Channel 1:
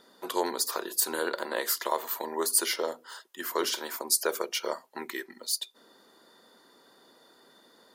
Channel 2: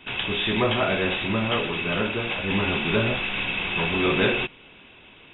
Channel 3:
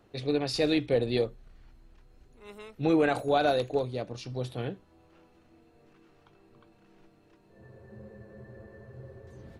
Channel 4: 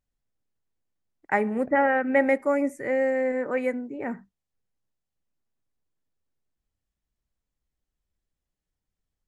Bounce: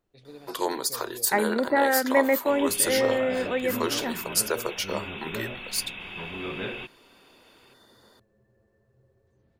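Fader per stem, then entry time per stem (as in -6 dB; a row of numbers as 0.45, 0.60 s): +1.0, -12.0, -18.0, -0.5 dB; 0.25, 2.40, 0.00, 0.00 s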